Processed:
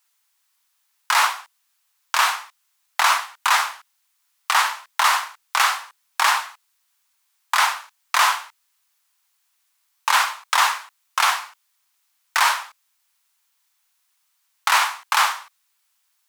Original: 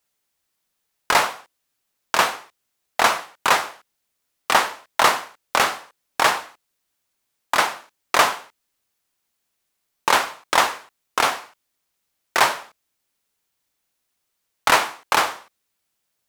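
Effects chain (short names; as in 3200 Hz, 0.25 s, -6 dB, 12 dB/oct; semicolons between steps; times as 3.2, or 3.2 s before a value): Chebyshev high-pass 950 Hz, order 3; maximiser +12 dB; gain -5 dB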